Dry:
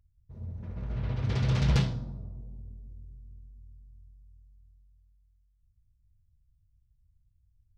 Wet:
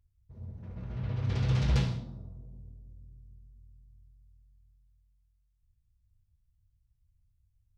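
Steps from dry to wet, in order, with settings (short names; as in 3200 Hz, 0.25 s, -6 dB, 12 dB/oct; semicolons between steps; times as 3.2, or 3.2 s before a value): non-linear reverb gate 0.22 s falling, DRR 6 dB; gain -4 dB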